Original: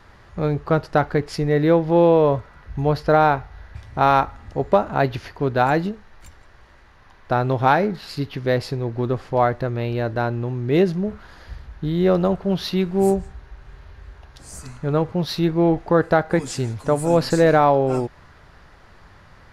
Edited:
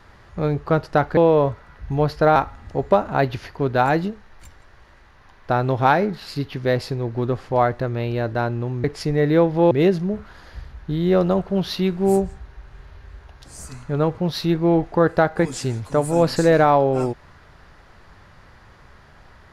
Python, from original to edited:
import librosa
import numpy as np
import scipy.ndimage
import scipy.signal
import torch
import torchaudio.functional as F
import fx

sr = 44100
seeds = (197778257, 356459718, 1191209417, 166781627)

y = fx.edit(x, sr, fx.move(start_s=1.17, length_s=0.87, to_s=10.65),
    fx.cut(start_s=3.23, length_s=0.94), tone=tone)